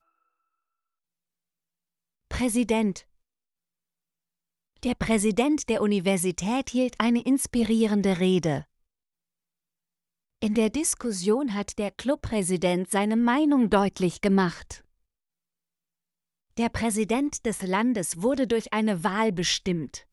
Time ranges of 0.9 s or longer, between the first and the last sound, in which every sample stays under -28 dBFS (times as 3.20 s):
2.98–4.83 s
8.59–10.42 s
14.72–16.58 s